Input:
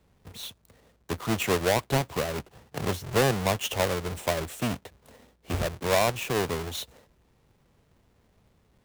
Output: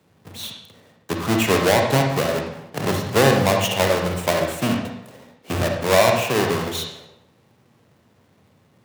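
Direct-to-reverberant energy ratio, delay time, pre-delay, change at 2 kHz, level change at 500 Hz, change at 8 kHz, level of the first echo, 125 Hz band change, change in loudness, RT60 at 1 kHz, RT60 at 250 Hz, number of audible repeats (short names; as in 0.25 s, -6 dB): 2.0 dB, none, 39 ms, +8.0 dB, +8.5 dB, +6.5 dB, none, +7.0 dB, +8.0 dB, 0.80 s, 0.90 s, none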